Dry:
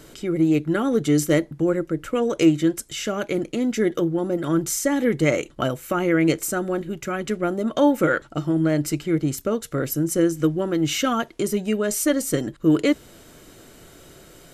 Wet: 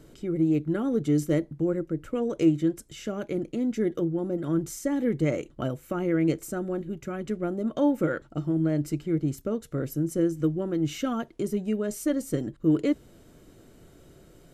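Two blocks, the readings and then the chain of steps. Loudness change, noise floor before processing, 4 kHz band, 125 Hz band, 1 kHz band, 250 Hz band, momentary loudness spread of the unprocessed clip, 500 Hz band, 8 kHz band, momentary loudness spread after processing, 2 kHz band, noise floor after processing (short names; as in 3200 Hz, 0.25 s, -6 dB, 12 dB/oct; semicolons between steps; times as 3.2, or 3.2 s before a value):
-5.5 dB, -49 dBFS, -13.0 dB, -3.0 dB, -10.0 dB, -4.5 dB, 7 LU, -6.5 dB, -13.5 dB, 7 LU, -12.0 dB, -55 dBFS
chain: tilt shelf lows +5.5 dB, about 630 Hz; gain -8 dB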